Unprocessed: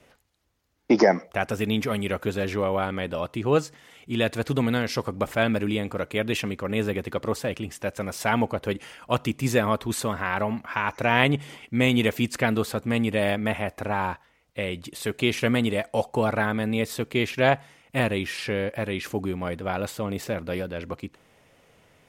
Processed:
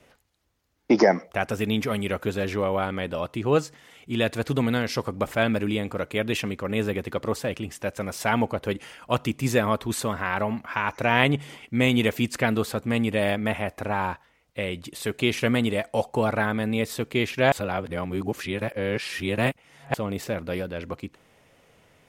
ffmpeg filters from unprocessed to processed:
ffmpeg -i in.wav -filter_complex "[0:a]asplit=3[link_01][link_02][link_03];[link_01]atrim=end=17.522[link_04];[link_02]atrim=start=17.518:end=19.942,asetpts=PTS-STARTPTS,areverse[link_05];[link_03]atrim=start=19.938[link_06];[link_04][link_05]acrossfade=duration=0.004:curve1=hsin:curve2=hsin[link_07];[link_07][link_06]acrossfade=duration=0.004:curve1=hsin:curve2=hsin" out.wav

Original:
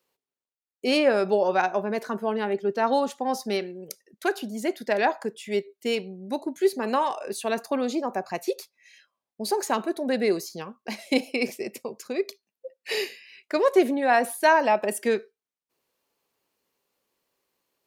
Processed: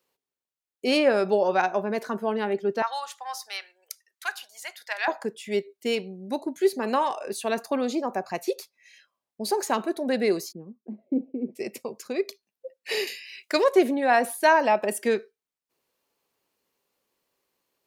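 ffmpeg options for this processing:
ffmpeg -i in.wav -filter_complex "[0:a]asettb=1/sr,asplit=3[link_01][link_02][link_03];[link_01]atrim=end=2.824[link_04];[link_02]atrim=start=2.82:end=5.08,asetpts=PTS-STARTPTS,afade=type=in:duration=0.004:curve=qsin,afade=type=out:start_time=2.256:duration=0.004:curve=qsin,highpass=frequency=950:width=0.5412,highpass=frequency=950:width=1.3066[link_05];[link_03]atrim=start=5.076[link_06];[link_04][link_05]acrossfade=duration=0.004:curve1=hsin:curve2=qsin[link_07];[link_07][link_06]acrossfade=duration=0.004:curve1=qsin:curve2=hsin,asplit=3[link_08][link_09][link_10];[link_08]afade=type=out:start_time=10.51:duration=0.02[link_11];[link_09]asuperpass=centerf=240:order=4:qfactor=1.1,afade=type=in:start_time=10.51:duration=0.02,afade=type=out:start_time=11.55:duration=0.02[link_12];[link_10]afade=type=in:start_time=11.55:duration=0.02[link_13];[link_11][link_12][link_13]amix=inputs=3:normalize=0,asettb=1/sr,asplit=3[link_14][link_15][link_16];[link_14]atrim=end=13.074[link_17];[link_15]atrim=start=13.07:end=13.64,asetpts=PTS-STARTPTS,afade=type=in:duration=0.004:curve=qsin,afade=type=out:start_time=0.566:duration=0.004:curve=qsin,highshelf=frequency=2300:gain=11.5[link_18];[link_16]atrim=start=13.636[link_19];[link_17][link_18]acrossfade=duration=0.004:curve1=hsin:curve2=qsin[link_20];[link_20][link_19]acrossfade=duration=0.004:curve1=qsin:curve2=hsin" out.wav

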